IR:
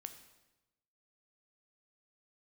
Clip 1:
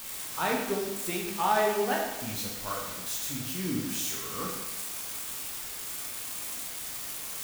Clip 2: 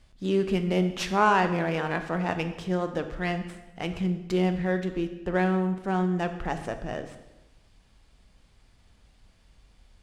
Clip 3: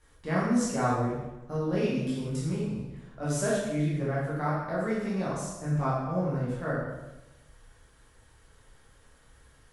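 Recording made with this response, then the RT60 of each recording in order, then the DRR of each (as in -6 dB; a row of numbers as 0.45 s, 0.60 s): 2; 1.0 s, 1.0 s, 1.0 s; -2.0 dB, 7.5 dB, -8.0 dB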